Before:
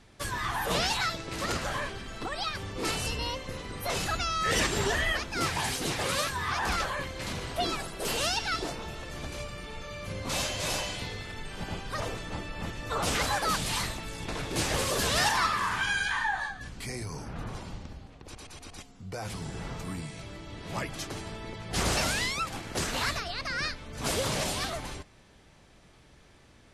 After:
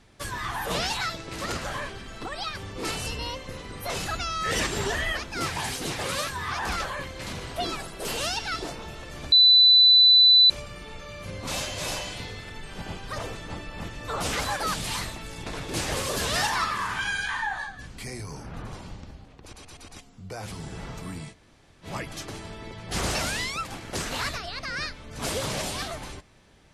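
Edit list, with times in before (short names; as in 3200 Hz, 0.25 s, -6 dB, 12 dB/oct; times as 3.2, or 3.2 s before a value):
9.32 add tone 3990 Hz -12 dBFS 1.18 s
20.14–20.66 room tone, crossfade 0.06 s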